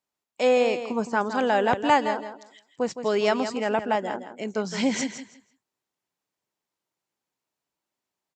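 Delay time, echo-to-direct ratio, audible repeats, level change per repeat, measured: 164 ms, -10.0 dB, 2, -14.0 dB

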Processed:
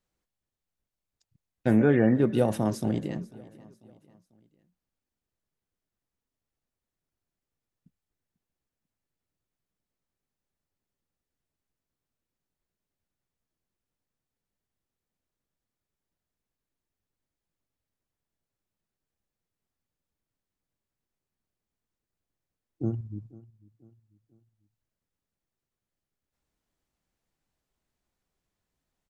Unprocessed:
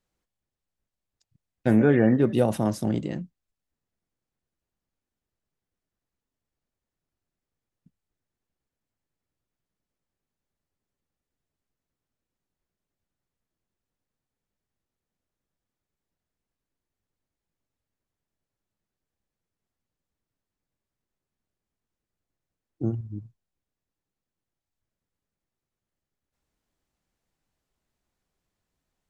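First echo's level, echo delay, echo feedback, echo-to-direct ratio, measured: -21.0 dB, 494 ms, 43%, -20.0 dB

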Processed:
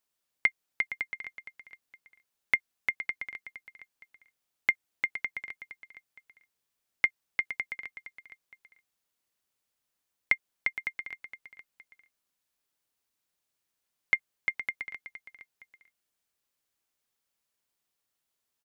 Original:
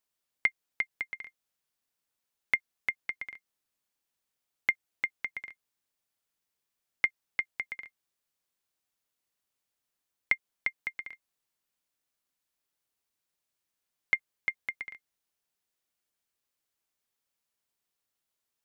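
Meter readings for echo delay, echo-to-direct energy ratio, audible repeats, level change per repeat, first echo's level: 465 ms, -12.5 dB, 2, -8.5 dB, -13.0 dB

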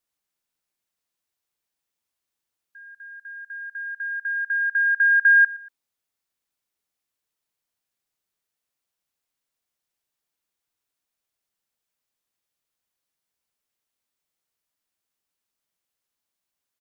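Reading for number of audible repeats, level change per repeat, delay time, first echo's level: 2, -6.5 dB, 118 ms, -21.0 dB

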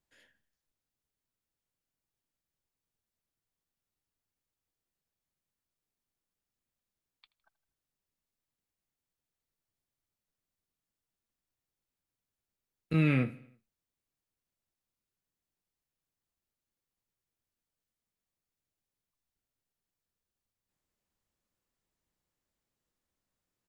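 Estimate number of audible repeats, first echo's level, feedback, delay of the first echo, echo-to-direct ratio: 3, -21.0 dB, 54%, 80 ms, -19.5 dB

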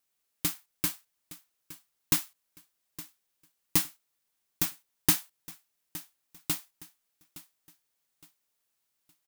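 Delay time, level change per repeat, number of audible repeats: 865 ms, -9.5 dB, 2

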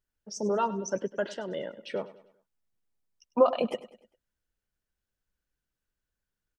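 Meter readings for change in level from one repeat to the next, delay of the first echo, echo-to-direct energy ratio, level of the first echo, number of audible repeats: -7.5 dB, 100 ms, -15.5 dB, -16.5 dB, 3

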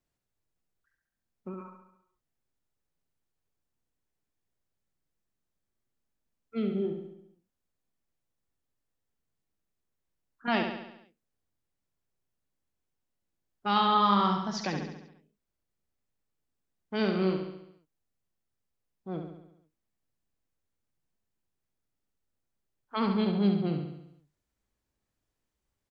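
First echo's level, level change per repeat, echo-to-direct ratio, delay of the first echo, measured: -6.0 dB, -5.0 dB, -4.5 dB, 69 ms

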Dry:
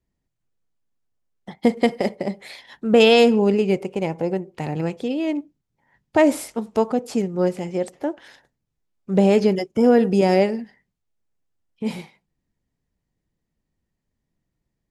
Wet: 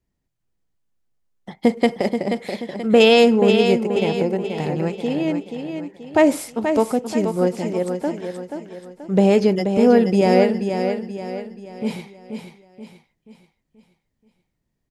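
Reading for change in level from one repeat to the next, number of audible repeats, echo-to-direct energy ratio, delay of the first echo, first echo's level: -7.5 dB, 4, -6.0 dB, 481 ms, -7.0 dB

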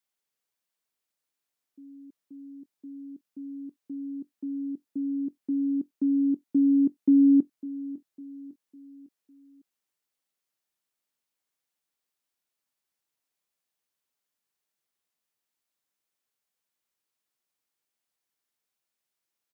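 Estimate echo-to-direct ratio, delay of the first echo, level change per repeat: -16.0 dB, 553 ms, -7.0 dB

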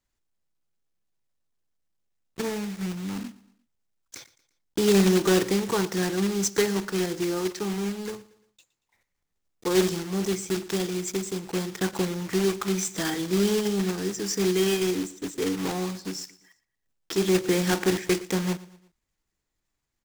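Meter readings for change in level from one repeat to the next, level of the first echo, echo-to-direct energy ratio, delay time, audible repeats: -7.0 dB, -19.5 dB, -18.5 dB, 116 ms, 3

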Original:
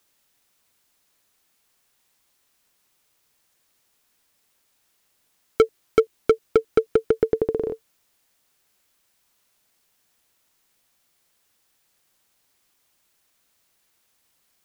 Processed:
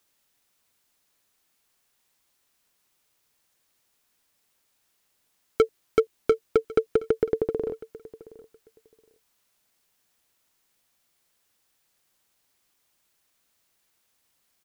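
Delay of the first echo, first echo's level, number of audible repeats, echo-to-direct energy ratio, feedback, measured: 720 ms, -19.5 dB, 2, -19.5 dB, 18%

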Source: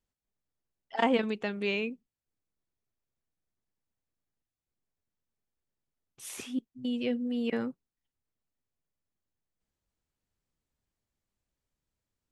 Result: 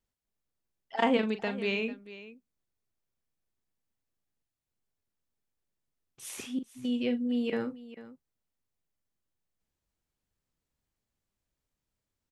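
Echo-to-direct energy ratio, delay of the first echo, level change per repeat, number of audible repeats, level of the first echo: -9.5 dB, 41 ms, no regular repeats, 2, -10.5 dB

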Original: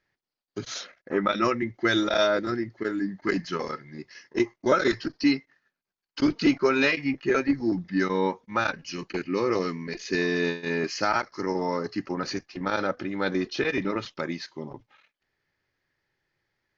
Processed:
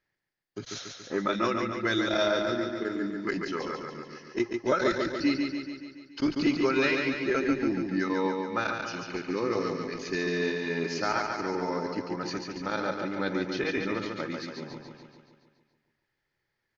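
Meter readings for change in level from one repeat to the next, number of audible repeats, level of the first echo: -4.5 dB, 7, -4.5 dB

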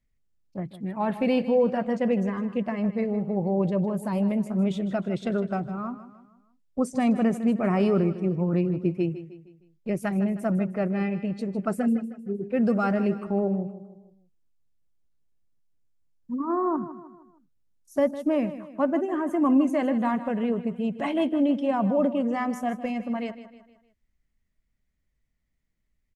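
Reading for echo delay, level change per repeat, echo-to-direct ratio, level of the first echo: 155 ms, -7.0 dB, -12.5 dB, -13.5 dB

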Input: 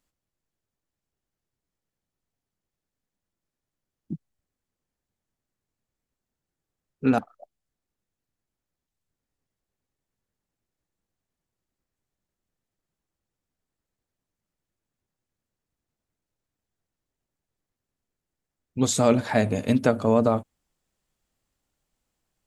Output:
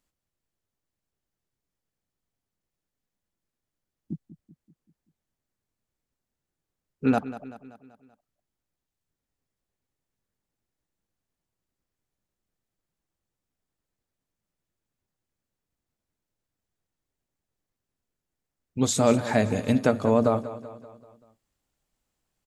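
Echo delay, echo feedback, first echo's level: 192 ms, 52%, -14.5 dB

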